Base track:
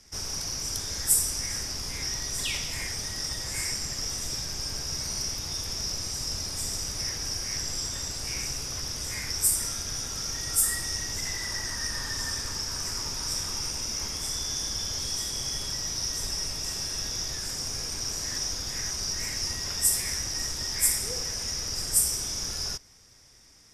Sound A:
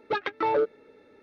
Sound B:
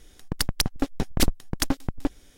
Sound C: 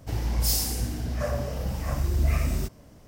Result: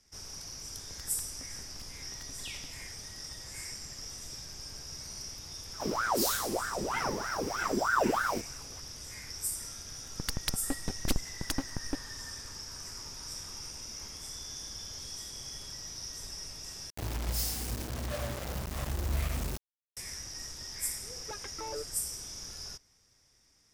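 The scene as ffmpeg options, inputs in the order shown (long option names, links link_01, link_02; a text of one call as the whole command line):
ffmpeg -i bed.wav -i cue0.wav -i cue1.wav -i cue2.wav -filter_complex "[2:a]asplit=2[link_01][link_02];[3:a]asplit=2[link_03][link_04];[0:a]volume=-11dB[link_05];[link_01]acompressor=threshold=-37dB:ratio=6:attack=3.2:release=140:knee=1:detection=peak[link_06];[link_03]aeval=exprs='val(0)*sin(2*PI*890*n/s+890*0.7/3.2*sin(2*PI*3.2*n/s))':channel_layout=same[link_07];[link_04]acrusher=bits=4:mix=0:aa=0.000001[link_08];[link_05]asplit=2[link_09][link_10];[link_09]atrim=end=16.904[link_11];[link_08]atrim=end=3.07,asetpts=PTS-STARTPTS,volume=-8.5dB[link_12];[link_10]atrim=start=19.966[link_13];[link_06]atrim=end=2.37,asetpts=PTS-STARTPTS,volume=-12.5dB,afade=type=in:duration=0.004:curve=hsin,afade=type=out:start_time=2.366:duration=0.004:curve=hsin,adelay=590[link_14];[link_07]atrim=end=3.07,asetpts=PTS-STARTPTS,volume=-2.5dB,afade=type=in:duration=0.004:curve=hsin,afade=type=out:start_time=3.066:duration=0.004:curve=hsin,adelay=252693S[link_15];[link_02]atrim=end=2.37,asetpts=PTS-STARTPTS,volume=-9dB,afade=type=in:duration=0.004:curve=hsin,afade=type=out:start_time=2.366:duration=0.004:curve=hsin,adelay=9880[link_16];[1:a]atrim=end=1.22,asetpts=PTS-STARTPTS,volume=-16dB,afade=type=in:duration=0.004:curve=hsin,afade=type=out:start_time=1.216:duration=0.004:curve=hsin,adelay=21180[link_17];[link_11][link_12]acrossfade=duration=0.004:curve1=hsin:curve2=hsin[link_18];[link_18][link_13]acrossfade=duration=0.004:curve1=hsin:curve2=hsin[link_19];[link_19][link_14][link_15][link_16][link_17]amix=inputs=5:normalize=0" out.wav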